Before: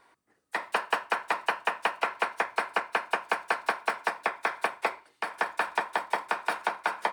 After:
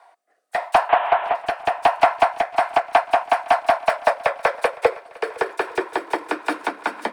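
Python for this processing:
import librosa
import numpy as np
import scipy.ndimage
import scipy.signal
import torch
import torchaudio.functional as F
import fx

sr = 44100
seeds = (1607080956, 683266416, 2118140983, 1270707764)

p1 = fx.delta_mod(x, sr, bps=16000, step_db=-29.5, at=(0.89, 1.35))
p2 = fx.filter_sweep_highpass(p1, sr, from_hz=710.0, to_hz=250.0, start_s=3.57, end_s=7.08, q=7.4)
p3 = fx.fold_sine(p2, sr, drive_db=8, ceiling_db=-3.0)
p4 = p2 + (p3 * 10.0 ** (-10.5 / 20.0))
p5 = fx.rotary_switch(p4, sr, hz=0.85, then_hz=5.5, switch_at_s=2.25)
y = p5 + fx.echo_swing(p5, sr, ms=852, ratio=1.5, feedback_pct=33, wet_db=-22.0, dry=0)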